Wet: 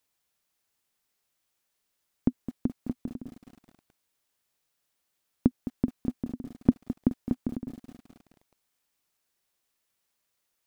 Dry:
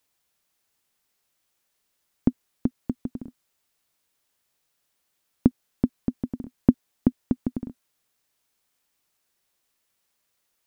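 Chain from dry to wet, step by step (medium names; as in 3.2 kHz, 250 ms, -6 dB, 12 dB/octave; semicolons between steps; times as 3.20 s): bit-crushed delay 212 ms, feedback 55%, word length 7-bit, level -12 dB; trim -4 dB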